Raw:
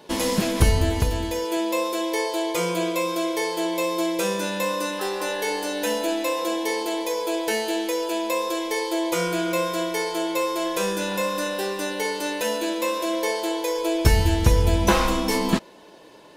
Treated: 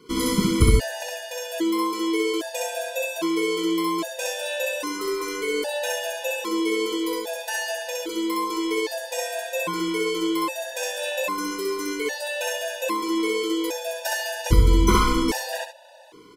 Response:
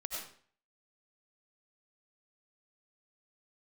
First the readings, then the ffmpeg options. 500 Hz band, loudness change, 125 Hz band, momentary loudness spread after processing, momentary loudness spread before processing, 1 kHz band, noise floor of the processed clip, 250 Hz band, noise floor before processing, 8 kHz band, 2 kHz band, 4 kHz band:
-2.0 dB, -1.0 dB, -1.5 dB, 9 LU, 6 LU, -1.5 dB, -38 dBFS, +0.5 dB, -47 dBFS, 0.0 dB, 0.0 dB, -0.5 dB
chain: -af "aecho=1:1:64.14|134.1:0.891|0.282,afftfilt=real='re*gt(sin(2*PI*0.62*pts/sr)*(1-2*mod(floor(b*sr/1024/490),2)),0)':imag='im*gt(sin(2*PI*0.62*pts/sr)*(1-2*mod(floor(b*sr/1024/490),2)),0)':win_size=1024:overlap=0.75"

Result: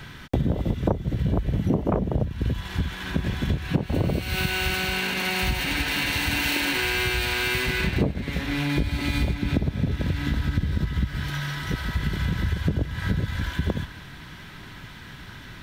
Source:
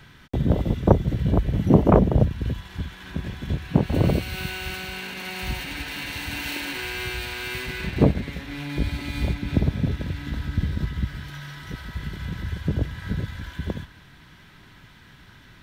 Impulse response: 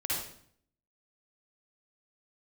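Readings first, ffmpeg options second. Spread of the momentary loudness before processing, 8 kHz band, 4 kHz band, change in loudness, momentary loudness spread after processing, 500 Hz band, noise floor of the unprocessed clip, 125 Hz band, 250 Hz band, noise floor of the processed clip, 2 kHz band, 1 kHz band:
13 LU, +6.0 dB, +6.0 dB, 0.0 dB, 8 LU, -4.0 dB, -50 dBFS, -1.0 dB, -2.0 dB, -42 dBFS, +6.0 dB, -0.5 dB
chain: -af "acompressor=threshold=0.0398:ratio=8,volume=2.51"

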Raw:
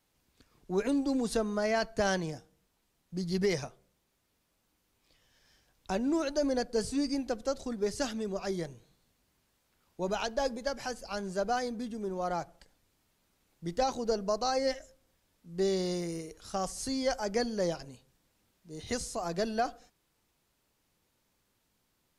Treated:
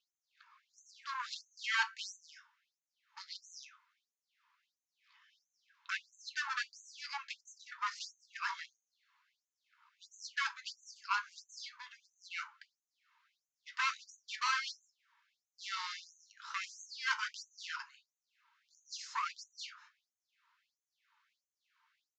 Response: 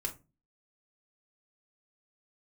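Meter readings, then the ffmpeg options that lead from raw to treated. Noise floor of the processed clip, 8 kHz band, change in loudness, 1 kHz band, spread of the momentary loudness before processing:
under -85 dBFS, -7.5 dB, -7.0 dB, -5.5 dB, 9 LU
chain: -filter_complex "[0:a]asoftclip=type=tanh:threshold=0.0282,adynamicsmooth=sensitivity=3.5:basefreq=1800,flanger=delay=8:depth=3.4:regen=-64:speed=0.11:shape=triangular,asplit=2[s0][s1];[1:a]atrim=start_sample=2205[s2];[s1][s2]afir=irnorm=-1:irlink=0,volume=0.631[s3];[s0][s3]amix=inputs=2:normalize=0,aresample=16000,aresample=44100,afftfilt=real='re*gte(b*sr/1024,850*pow(6100/850,0.5+0.5*sin(2*PI*1.5*pts/sr)))':imag='im*gte(b*sr/1024,850*pow(6100/850,0.5+0.5*sin(2*PI*1.5*pts/sr)))':win_size=1024:overlap=0.75,volume=5.01"

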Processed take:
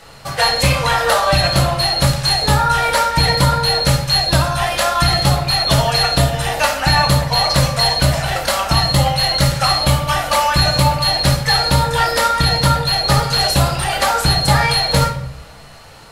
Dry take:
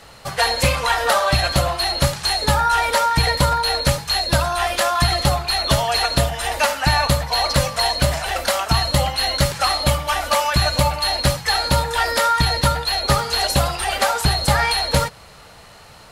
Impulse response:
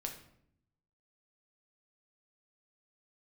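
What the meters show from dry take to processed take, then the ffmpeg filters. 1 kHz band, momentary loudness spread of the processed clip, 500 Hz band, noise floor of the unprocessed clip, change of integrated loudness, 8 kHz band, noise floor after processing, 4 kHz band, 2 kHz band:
+3.0 dB, 3 LU, +2.5 dB, -44 dBFS, +4.0 dB, +2.5 dB, -39 dBFS, +4.5 dB, +2.5 dB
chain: -filter_complex "[1:a]atrim=start_sample=2205[s0];[0:a][s0]afir=irnorm=-1:irlink=0,volume=1.58"

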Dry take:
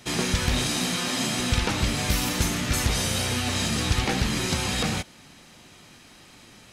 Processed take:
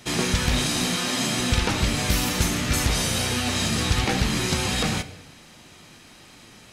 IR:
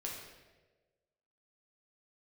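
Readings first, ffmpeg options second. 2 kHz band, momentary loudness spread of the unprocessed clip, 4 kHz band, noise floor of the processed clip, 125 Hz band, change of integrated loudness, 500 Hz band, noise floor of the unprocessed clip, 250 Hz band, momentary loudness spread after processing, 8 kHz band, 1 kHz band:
+2.0 dB, 1 LU, +2.0 dB, -49 dBFS, +1.5 dB, +2.0 dB, +2.0 dB, -51 dBFS, +2.0 dB, 1 LU, +2.0 dB, +2.0 dB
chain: -filter_complex "[0:a]asplit=2[s0][s1];[1:a]atrim=start_sample=2205,afade=t=out:st=0.41:d=0.01,atrim=end_sample=18522[s2];[s1][s2]afir=irnorm=-1:irlink=0,volume=0.355[s3];[s0][s3]amix=inputs=2:normalize=0"

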